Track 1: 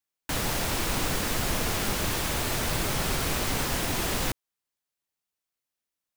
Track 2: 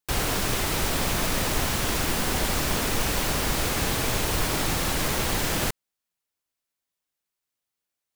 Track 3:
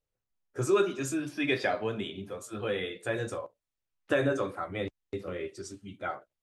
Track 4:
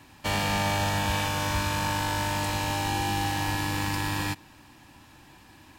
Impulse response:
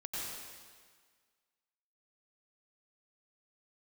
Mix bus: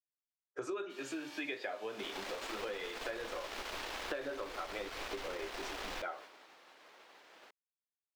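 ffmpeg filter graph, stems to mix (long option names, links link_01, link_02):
-filter_complex "[0:a]asubboost=boost=9.5:cutoff=59,aeval=exprs='sgn(val(0))*max(abs(val(0))-0.0266,0)':channel_layout=same,adelay=1700,volume=-6.5dB[link_01];[1:a]highpass=frequency=480:poles=1,highshelf=frequency=2900:gain=-4.5,adelay=1800,volume=-18dB[link_02];[2:a]volume=2dB[link_03];[3:a]aderivative,adelay=650,volume=-9dB[link_04];[link_01][link_02][link_03][link_04]amix=inputs=4:normalize=0,agate=range=-33dB:threshold=-40dB:ratio=3:detection=peak,acrossover=split=300 5200:gain=0.0708 1 0.141[link_05][link_06][link_07];[link_05][link_06][link_07]amix=inputs=3:normalize=0,acompressor=threshold=-38dB:ratio=6"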